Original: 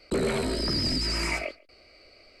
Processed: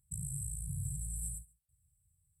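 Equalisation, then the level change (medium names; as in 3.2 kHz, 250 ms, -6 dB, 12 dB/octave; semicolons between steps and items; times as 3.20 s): high-pass 63 Hz; brick-wall FIR band-stop 160–7600 Hz; bass shelf 160 Hz -8 dB; +3.0 dB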